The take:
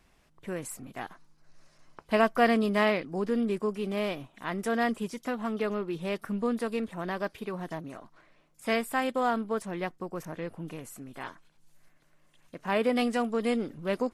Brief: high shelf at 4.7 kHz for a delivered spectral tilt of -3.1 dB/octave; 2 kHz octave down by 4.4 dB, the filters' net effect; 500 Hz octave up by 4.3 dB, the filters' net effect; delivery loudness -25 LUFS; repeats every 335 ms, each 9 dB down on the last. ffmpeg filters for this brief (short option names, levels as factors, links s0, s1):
-af "equalizer=f=500:t=o:g=5.5,equalizer=f=2000:t=o:g=-4.5,highshelf=f=4700:g=-7,aecho=1:1:335|670|1005|1340:0.355|0.124|0.0435|0.0152,volume=1.33"